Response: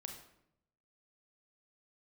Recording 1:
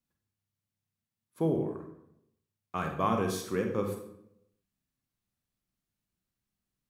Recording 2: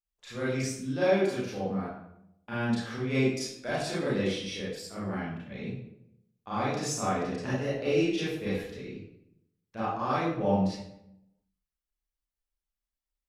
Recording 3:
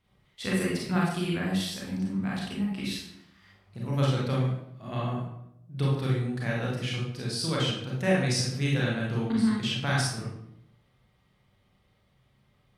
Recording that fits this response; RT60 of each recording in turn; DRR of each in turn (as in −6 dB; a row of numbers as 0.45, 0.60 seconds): 1; 0.75, 0.75, 0.75 seconds; 3.0, −9.5, −5.0 decibels